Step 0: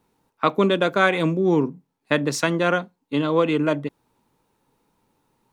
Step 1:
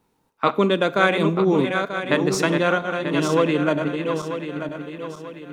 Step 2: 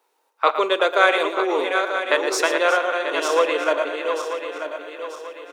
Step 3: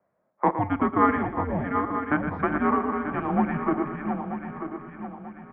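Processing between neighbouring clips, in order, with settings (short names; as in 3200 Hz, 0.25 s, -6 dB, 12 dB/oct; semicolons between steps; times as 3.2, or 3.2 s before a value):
regenerating reverse delay 0.469 s, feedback 63%, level -6 dB; Schroeder reverb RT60 0.69 s, combs from 32 ms, DRR 18.5 dB
inverse Chebyshev high-pass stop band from 170 Hz, stop band 50 dB; on a send: tapped delay 0.114/0.363 s -10.5/-14 dB; on the sum: gain +2.5 dB
mistuned SSB -290 Hz 440–2100 Hz; gain -3.5 dB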